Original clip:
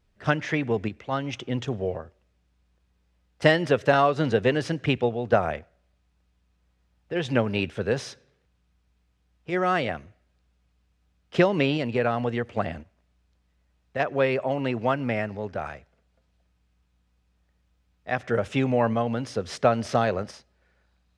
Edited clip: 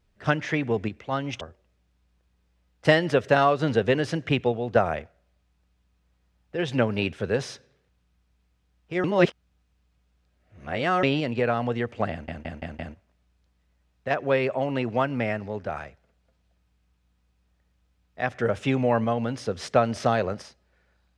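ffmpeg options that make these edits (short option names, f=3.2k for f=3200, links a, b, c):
-filter_complex "[0:a]asplit=8[a][b][c][d][e][f][g][h];[a]atrim=end=1.412[i];[b]atrim=start=1.978:end=9.612[j];[c]atrim=start=9.608:end=11.602,asetpts=PTS-STARTPTS,areverse[k];[d]atrim=start=11.598:end=12.852[l];[e]atrim=start=12.678:end=12.852[m];[f]atrim=start=12.678:end=12.852[n];[g]atrim=start=12.678:end=12.852[o];[h]atrim=start=12.678[p];[i][j]acrossfade=d=0.004:c1=hsin:c2=hsin[q];[q][k]acrossfade=d=0.004:c1=hsin:c2=hsin[r];[r][l]acrossfade=d=0.004:c1=hsin:c2=hsin[s];[s][m]acrossfade=d=0.004:c1=hsin:c2=hsin[t];[t][n]acrossfade=d=0.004:c1=hsin:c2=hsin[u];[u][o]acrossfade=d=0.004:c1=hsin:c2=hsin[v];[v][p]acrossfade=d=0.004:c1=hsin:c2=hsin"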